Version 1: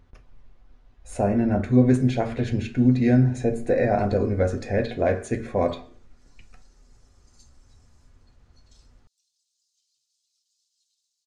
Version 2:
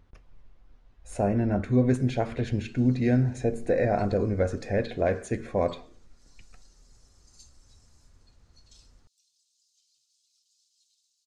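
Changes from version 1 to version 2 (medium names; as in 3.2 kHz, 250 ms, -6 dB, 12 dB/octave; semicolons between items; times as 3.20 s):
speech: send -10.5 dB; background +4.0 dB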